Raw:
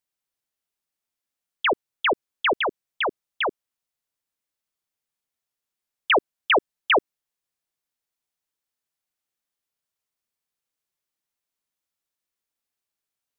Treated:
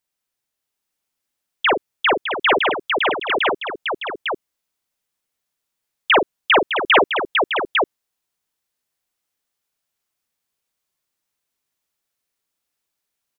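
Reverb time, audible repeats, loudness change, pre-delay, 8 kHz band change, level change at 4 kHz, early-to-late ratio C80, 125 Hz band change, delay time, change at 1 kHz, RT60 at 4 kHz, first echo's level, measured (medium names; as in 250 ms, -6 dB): no reverb, 4, +5.0 dB, no reverb, no reading, +7.0 dB, no reverb, +7.0 dB, 42 ms, +7.0 dB, no reverb, -6.5 dB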